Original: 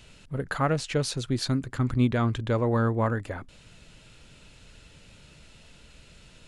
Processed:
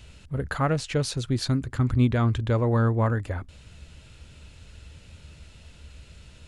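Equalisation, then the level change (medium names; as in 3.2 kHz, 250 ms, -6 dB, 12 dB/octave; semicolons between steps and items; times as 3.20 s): peaking EQ 72 Hz +15 dB 0.8 oct; 0.0 dB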